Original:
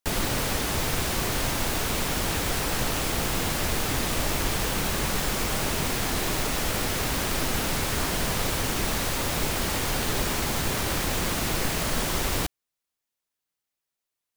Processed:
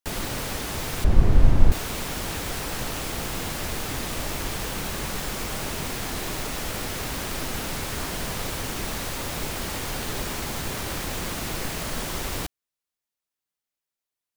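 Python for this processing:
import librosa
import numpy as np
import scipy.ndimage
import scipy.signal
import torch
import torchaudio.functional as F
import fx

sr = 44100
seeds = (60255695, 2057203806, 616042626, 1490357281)

y = fx.tilt_eq(x, sr, slope=-4.5, at=(1.04, 1.72))
y = y * librosa.db_to_amplitude(-3.5)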